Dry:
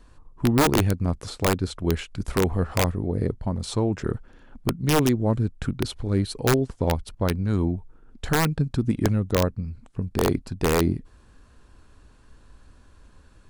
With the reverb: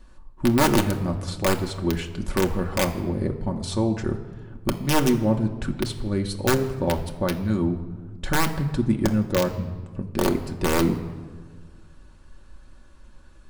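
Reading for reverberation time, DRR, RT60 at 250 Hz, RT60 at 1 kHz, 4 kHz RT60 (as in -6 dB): 1.6 s, 2.5 dB, 2.0 s, 1.5 s, 0.95 s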